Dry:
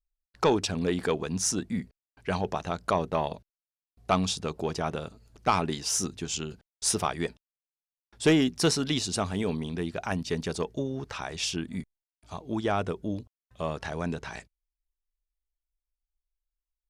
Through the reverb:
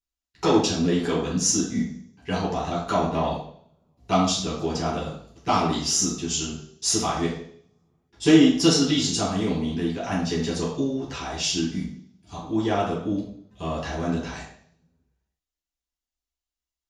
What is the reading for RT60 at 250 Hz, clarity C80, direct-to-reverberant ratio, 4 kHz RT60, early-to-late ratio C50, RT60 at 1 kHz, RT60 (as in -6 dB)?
0.70 s, 7.5 dB, -7.5 dB, 0.70 s, 3.5 dB, 0.55 s, 0.60 s